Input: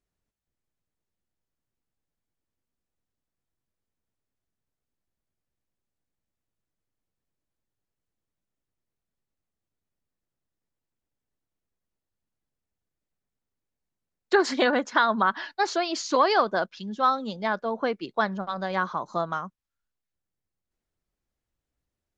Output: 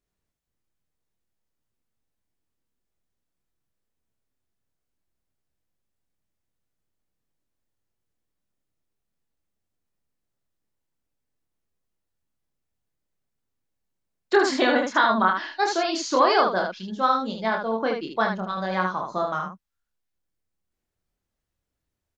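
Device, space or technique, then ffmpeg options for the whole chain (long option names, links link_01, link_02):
slapback doubling: -filter_complex "[0:a]asplit=3[link_01][link_02][link_03];[link_02]adelay=27,volume=-4dB[link_04];[link_03]adelay=76,volume=-5dB[link_05];[link_01][link_04][link_05]amix=inputs=3:normalize=0"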